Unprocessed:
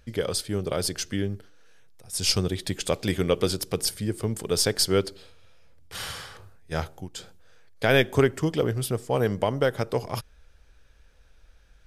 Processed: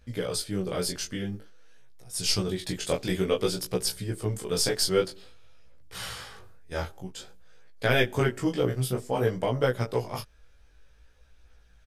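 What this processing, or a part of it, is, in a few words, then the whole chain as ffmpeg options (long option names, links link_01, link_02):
double-tracked vocal: -filter_complex "[0:a]asplit=2[link_01][link_02];[link_02]adelay=16,volume=-3dB[link_03];[link_01][link_03]amix=inputs=2:normalize=0,flanger=delay=16:depth=7.1:speed=0.52,volume=-1dB"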